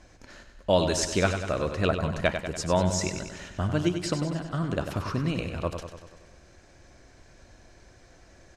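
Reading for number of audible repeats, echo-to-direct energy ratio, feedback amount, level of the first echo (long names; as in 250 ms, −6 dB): 7, −6.0 dB, 60%, −8.0 dB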